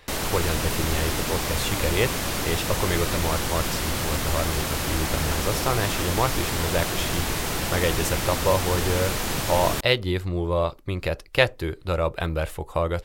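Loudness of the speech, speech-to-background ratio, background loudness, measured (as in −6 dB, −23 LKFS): −27.0 LKFS, −0.5 dB, −26.5 LKFS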